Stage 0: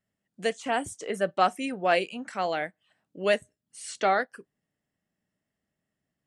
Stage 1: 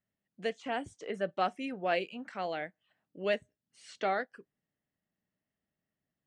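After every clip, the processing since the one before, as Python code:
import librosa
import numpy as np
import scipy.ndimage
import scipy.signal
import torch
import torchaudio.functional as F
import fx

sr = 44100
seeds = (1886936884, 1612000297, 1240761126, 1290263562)

y = fx.dynamic_eq(x, sr, hz=1100.0, q=1.2, threshold_db=-38.0, ratio=4.0, max_db=-4)
y = scipy.signal.sosfilt(scipy.signal.butter(2, 4200.0, 'lowpass', fs=sr, output='sos'), y)
y = F.gain(torch.from_numpy(y), -5.5).numpy()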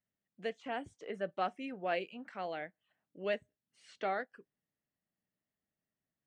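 y = fx.bass_treble(x, sr, bass_db=-1, treble_db=-6)
y = F.gain(torch.from_numpy(y), -4.0).numpy()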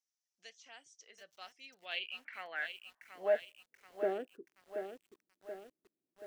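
y = fx.filter_sweep_bandpass(x, sr, from_hz=5800.0, to_hz=340.0, start_s=1.47, end_s=4.0, q=5.2)
y = fx.echo_crushed(y, sr, ms=730, feedback_pct=55, bits=12, wet_db=-8)
y = F.gain(torch.from_numpy(y), 12.5).numpy()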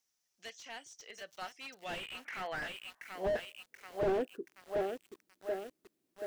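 y = fx.slew_limit(x, sr, full_power_hz=6.7)
y = F.gain(torch.from_numpy(y), 9.5).numpy()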